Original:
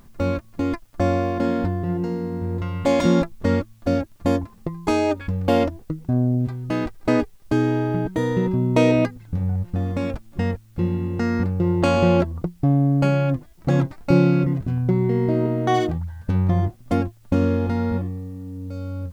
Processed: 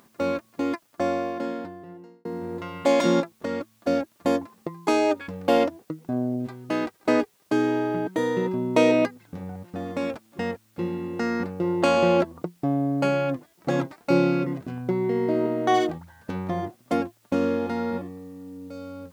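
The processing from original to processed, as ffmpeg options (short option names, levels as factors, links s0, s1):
-filter_complex "[0:a]asettb=1/sr,asplit=3[s0][s1][s2];[s0]atrim=end=3.204[s3];[s1]atrim=start=3.2:end=3.61,asetpts=PTS-STARTPTS,afade=t=in:d=0.004:c=qsin,afade=t=out:st=0.406:d=0.004:c=qsin,acompressor=threshold=0.0794:ratio=3:attack=3.2:release=140:knee=1:detection=peak[s4];[s2]atrim=start=3.606[s5];[s3][s4]acrossfade=d=0.004:c1=hsin:c2=qsin[s6];[s6][s5]acrossfade=d=0.004:c1=qsin:c2=hsin,asplit=2[s7][s8];[s7]atrim=end=2.25,asetpts=PTS-STARTPTS,afade=t=out:st=0.72:d=1.53[s9];[s8]atrim=start=2.25,asetpts=PTS-STARTPTS,afade=t=in:d=0.004:c=hsin[s10];[s9][s10]concat=n=2:v=0:a=1,highpass=280"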